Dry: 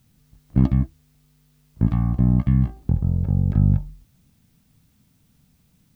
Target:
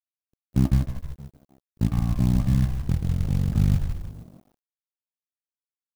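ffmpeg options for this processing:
ffmpeg -i in.wav -filter_complex "[0:a]asplit=7[link_01][link_02][link_03][link_04][link_05][link_06][link_07];[link_02]adelay=154,afreqshift=-69,volume=-6dB[link_08];[link_03]adelay=308,afreqshift=-138,volume=-12.2dB[link_09];[link_04]adelay=462,afreqshift=-207,volume=-18.4dB[link_10];[link_05]adelay=616,afreqshift=-276,volume=-24.6dB[link_11];[link_06]adelay=770,afreqshift=-345,volume=-30.8dB[link_12];[link_07]adelay=924,afreqshift=-414,volume=-37dB[link_13];[link_01][link_08][link_09][link_10][link_11][link_12][link_13]amix=inputs=7:normalize=0,aeval=exprs='sgn(val(0))*max(abs(val(0))-0.0075,0)':channel_layout=same,acrusher=bits=6:mode=log:mix=0:aa=0.000001,volume=-3.5dB" out.wav

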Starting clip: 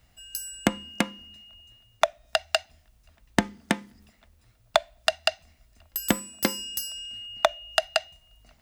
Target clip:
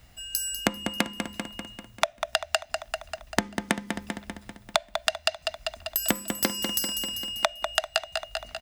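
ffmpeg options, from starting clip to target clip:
ffmpeg -i in.wav -af "aecho=1:1:196|392|588|784|980|1176:0.282|0.158|0.0884|0.0495|0.0277|0.0155,acompressor=threshold=-31dB:ratio=3,volume=7dB" out.wav

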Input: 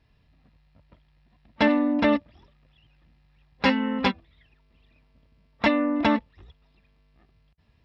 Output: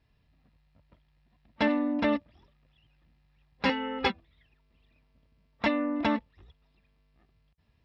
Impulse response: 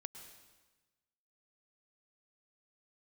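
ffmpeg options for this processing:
-filter_complex "[0:a]asettb=1/sr,asplit=3[link_01][link_02][link_03];[link_01]atrim=end=3.694[link_04];[link_02]atrim=start=3.69:end=4.1,asetpts=PTS-STARTPTS,afade=type=in:duration=0.004:curve=qsin,afade=type=out:start_time=0.406:duration=0.004:curve=qsin,aecho=1:1:2.4:0.9,atrim=end_sample=18081[link_05];[link_03]atrim=start=4.096[link_06];[link_04][link_05]acrossfade=duration=0.004:curve1=hsin:curve2=qsin[link_07];[link_07][link_06]acrossfade=duration=0.004:curve1=qsin:curve2=hsin,volume=-5.5dB"

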